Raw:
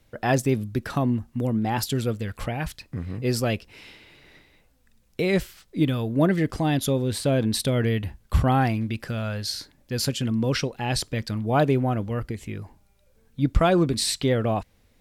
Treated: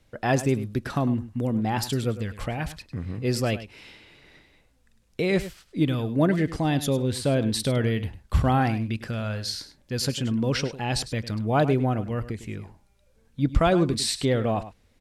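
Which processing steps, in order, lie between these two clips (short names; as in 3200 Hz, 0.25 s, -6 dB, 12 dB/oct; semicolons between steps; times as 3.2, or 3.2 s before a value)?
LPF 11000 Hz 12 dB/oct; on a send: echo 0.102 s -14 dB; on the sum: gain -1 dB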